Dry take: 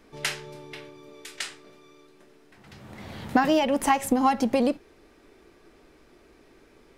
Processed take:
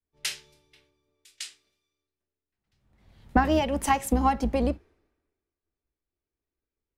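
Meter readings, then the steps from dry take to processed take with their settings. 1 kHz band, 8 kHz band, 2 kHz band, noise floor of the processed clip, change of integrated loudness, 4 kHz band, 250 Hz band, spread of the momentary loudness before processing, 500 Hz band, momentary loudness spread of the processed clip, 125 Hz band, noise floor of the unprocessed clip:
-1.5 dB, -0.5 dB, -2.5 dB, under -85 dBFS, -1.0 dB, -2.5 dB, -2.5 dB, 21 LU, -3.0 dB, 17 LU, +8.5 dB, -57 dBFS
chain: octaver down 2 oct, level -3 dB; three-band expander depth 100%; gain -7.5 dB

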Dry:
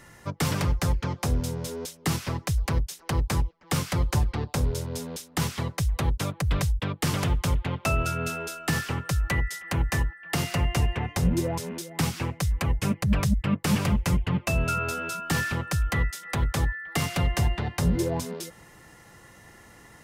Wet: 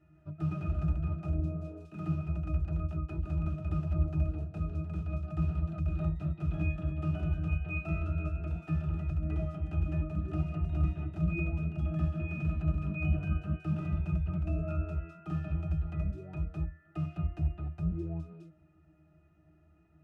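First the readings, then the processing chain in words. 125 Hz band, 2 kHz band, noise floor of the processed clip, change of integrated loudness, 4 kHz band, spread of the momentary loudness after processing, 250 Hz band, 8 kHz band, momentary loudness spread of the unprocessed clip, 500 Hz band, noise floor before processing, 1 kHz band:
-4.5 dB, -15.0 dB, -64 dBFS, -6.5 dB, under -25 dB, 6 LU, -6.5 dB, under -35 dB, 5 LU, -12.0 dB, -52 dBFS, -16.0 dB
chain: echoes that change speed 0.153 s, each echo +2 st, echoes 3; octave resonator D#, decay 0.2 s

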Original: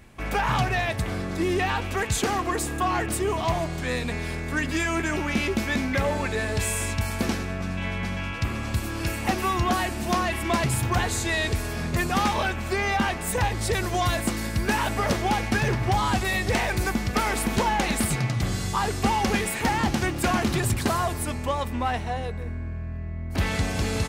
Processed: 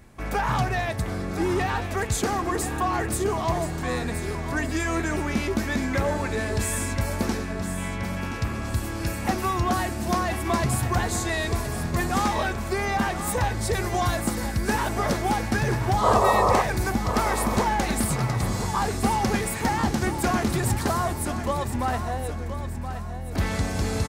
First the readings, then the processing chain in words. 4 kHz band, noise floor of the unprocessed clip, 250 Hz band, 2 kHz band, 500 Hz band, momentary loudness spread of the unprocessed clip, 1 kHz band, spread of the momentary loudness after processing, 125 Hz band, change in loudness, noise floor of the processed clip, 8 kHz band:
-3.0 dB, -32 dBFS, +0.5 dB, -2.0 dB, +1.5 dB, 6 LU, +1.0 dB, 6 LU, +0.5 dB, 0.0 dB, -31 dBFS, 0.0 dB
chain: bell 2800 Hz -6.5 dB 0.91 oct; painted sound noise, 16.03–16.62, 380–1300 Hz -20 dBFS; on a send: feedback echo 1.024 s, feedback 38%, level -10 dB

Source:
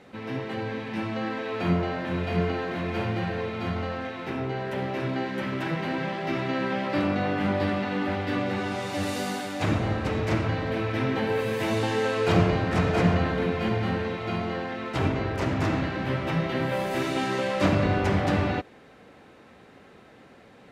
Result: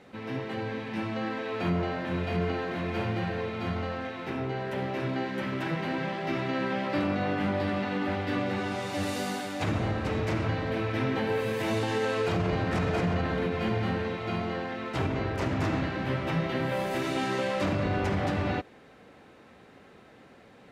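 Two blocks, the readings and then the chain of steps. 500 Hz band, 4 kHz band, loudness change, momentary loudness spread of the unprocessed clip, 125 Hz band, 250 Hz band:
-3.0 dB, -2.5 dB, -3.0 dB, 8 LU, -3.5 dB, -3.0 dB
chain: limiter -17 dBFS, peak gain reduction 8.5 dB; gain -2 dB

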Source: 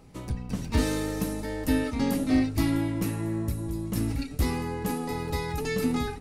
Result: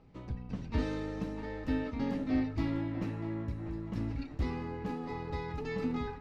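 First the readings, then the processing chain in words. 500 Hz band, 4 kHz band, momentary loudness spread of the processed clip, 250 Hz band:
-7.5 dB, -13.0 dB, 7 LU, -7.5 dB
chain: air absorption 200 m; on a send: narrowing echo 0.643 s, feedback 59%, band-pass 1100 Hz, level -8 dB; on the sum: gain -7 dB

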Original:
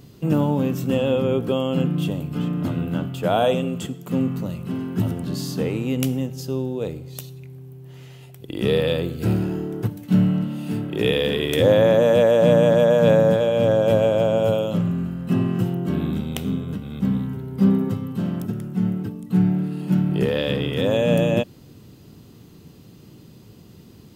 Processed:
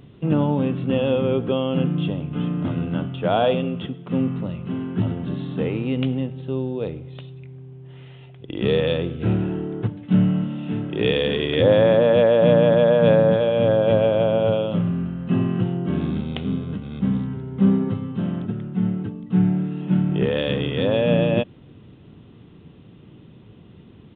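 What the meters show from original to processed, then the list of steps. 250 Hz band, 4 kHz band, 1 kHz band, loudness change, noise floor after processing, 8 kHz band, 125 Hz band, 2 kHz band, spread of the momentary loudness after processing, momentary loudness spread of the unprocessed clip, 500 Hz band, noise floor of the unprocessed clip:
0.0 dB, -0.5 dB, 0.0 dB, 0.0 dB, -47 dBFS, n/a, 0.0 dB, 0.0 dB, 12 LU, 12 LU, 0.0 dB, -47 dBFS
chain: downsampling 8000 Hz

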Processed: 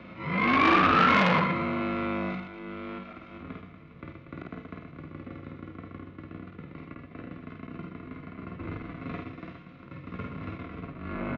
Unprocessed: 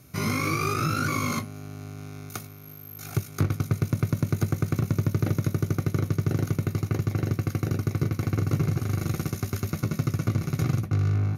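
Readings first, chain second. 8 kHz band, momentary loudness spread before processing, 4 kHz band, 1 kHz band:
under -20 dB, 13 LU, +2.5 dB, +7.0 dB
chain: mistuned SSB -67 Hz 220–3200 Hz; in parallel at +2 dB: compressor 6:1, threshold -38 dBFS, peak gain reduction 13 dB; on the sum: auto swell 0.551 s; on a send: reverse bouncing-ball echo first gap 50 ms, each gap 1.5×, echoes 5; on the sum: harmonic-percussive split harmonic +9 dB; core saturation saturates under 1600 Hz

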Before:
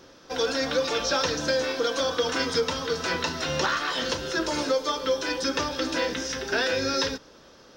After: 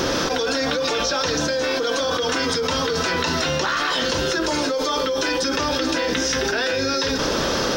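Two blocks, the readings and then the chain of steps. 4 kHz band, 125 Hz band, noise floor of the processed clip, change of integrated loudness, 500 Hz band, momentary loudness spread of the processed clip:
+6.0 dB, +8.0 dB, -23 dBFS, +5.0 dB, +4.5 dB, 1 LU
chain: fast leveller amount 100%; gain -1.5 dB

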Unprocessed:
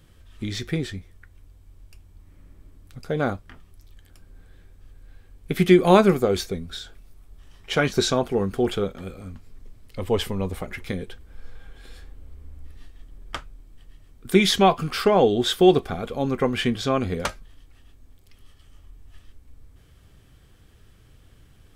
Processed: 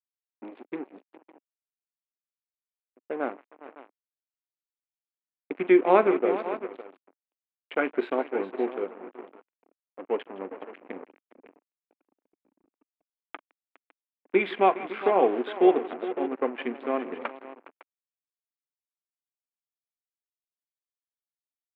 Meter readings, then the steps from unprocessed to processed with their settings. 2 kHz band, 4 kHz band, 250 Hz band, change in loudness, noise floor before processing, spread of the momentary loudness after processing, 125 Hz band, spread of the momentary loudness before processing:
-5.0 dB, -19.0 dB, -6.5 dB, -4.0 dB, -53 dBFS, 21 LU, under -20 dB, 20 LU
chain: Wiener smoothing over 25 samples; tapped delay 42/163/411/557 ms -17/-17/-12.5/-12.5 dB; crossover distortion -33 dBFS; elliptic band-pass 280–2500 Hz, stop band 40 dB; gain -2 dB

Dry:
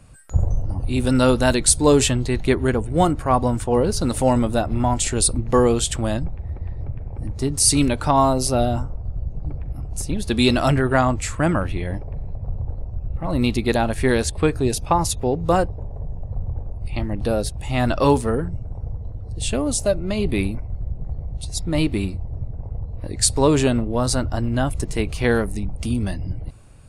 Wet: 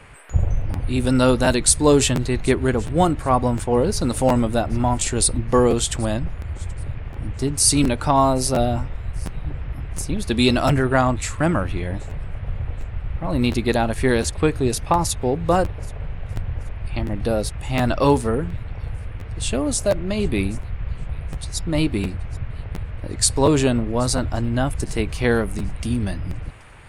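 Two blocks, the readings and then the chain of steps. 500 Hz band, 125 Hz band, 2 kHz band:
0.0 dB, 0.0 dB, 0.0 dB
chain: band noise 330–2500 Hz -49 dBFS; thin delay 0.779 s, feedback 31%, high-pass 3000 Hz, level -22 dB; crackling interface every 0.71 s, samples 512, repeat, from 0.73

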